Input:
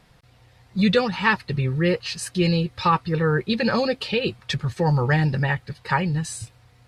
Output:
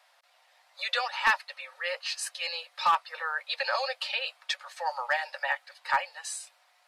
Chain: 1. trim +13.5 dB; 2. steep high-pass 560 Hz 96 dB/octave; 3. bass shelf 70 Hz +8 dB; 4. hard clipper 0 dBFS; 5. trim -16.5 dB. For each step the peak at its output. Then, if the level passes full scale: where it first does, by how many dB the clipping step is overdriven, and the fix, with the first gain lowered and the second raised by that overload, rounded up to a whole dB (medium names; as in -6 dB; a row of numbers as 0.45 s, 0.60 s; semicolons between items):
+7.0 dBFS, +7.5 dBFS, +7.5 dBFS, 0.0 dBFS, -16.5 dBFS; step 1, 7.5 dB; step 1 +5.5 dB, step 5 -8.5 dB